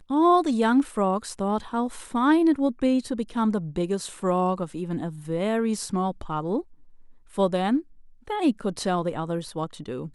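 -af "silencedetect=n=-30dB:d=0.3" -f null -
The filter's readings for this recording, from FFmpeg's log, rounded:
silence_start: 6.61
silence_end: 7.38 | silence_duration: 0.77
silence_start: 7.80
silence_end: 8.28 | silence_duration: 0.48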